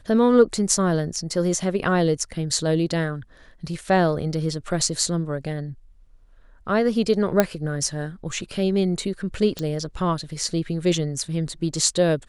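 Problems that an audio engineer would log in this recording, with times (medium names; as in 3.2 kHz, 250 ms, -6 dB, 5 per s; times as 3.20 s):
7.40 s: pop -3 dBFS
9.59 s: pop -14 dBFS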